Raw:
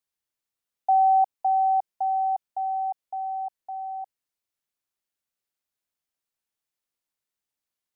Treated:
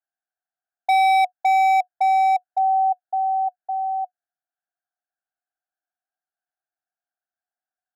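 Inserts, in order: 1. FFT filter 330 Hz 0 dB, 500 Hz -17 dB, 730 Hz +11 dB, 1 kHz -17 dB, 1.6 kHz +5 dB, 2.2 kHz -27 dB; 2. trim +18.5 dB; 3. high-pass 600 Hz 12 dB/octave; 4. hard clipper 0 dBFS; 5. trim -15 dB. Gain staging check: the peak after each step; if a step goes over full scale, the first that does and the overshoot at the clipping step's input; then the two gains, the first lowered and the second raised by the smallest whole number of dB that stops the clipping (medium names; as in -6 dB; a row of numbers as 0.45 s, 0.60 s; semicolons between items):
-7.5 dBFS, +11.0 dBFS, +9.5 dBFS, 0.0 dBFS, -15.0 dBFS; step 2, 9.5 dB; step 2 +8.5 dB, step 5 -5 dB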